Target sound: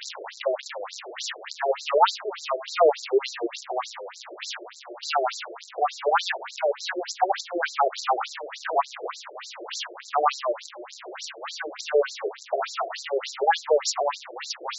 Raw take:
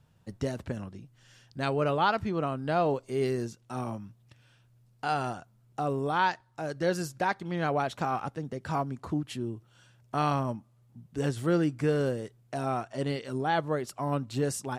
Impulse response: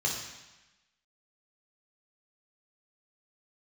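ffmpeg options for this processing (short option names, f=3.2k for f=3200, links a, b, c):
-filter_complex "[0:a]aeval=exprs='val(0)+0.5*0.0299*sgn(val(0))':c=same,highshelf=f=3.4k:g=3.5,asplit=2[a][b];[b]volume=19.5dB,asoftclip=hard,volume=-19.5dB,volume=-9.5dB[c];[a][c]amix=inputs=2:normalize=0,afftfilt=real='re*between(b*sr/1024,470*pow(5500/470,0.5+0.5*sin(2*PI*3.4*pts/sr))/1.41,470*pow(5500/470,0.5+0.5*sin(2*PI*3.4*pts/sr))*1.41)':imag='im*between(b*sr/1024,470*pow(5500/470,0.5+0.5*sin(2*PI*3.4*pts/sr))/1.41,470*pow(5500/470,0.5+0.5*sin(2*PI*3.4*pts/sr))*1.41)':win_size=1024:overlap=0.75,volume=7.5dB"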